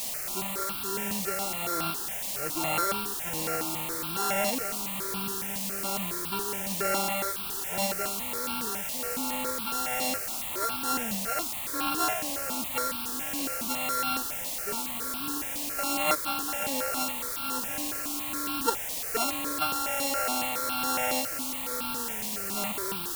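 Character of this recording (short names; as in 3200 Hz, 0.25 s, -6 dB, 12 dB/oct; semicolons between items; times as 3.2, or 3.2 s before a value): a buzz of ramps at a fixed pitch in blocks of 32 samples; tremolo triangle 1.2 Hz, depth 55%; a quantiser's noise floor 6-bit, dither triangular; notches that jump at a steady rate 7.2 Hz 380–1900 Hz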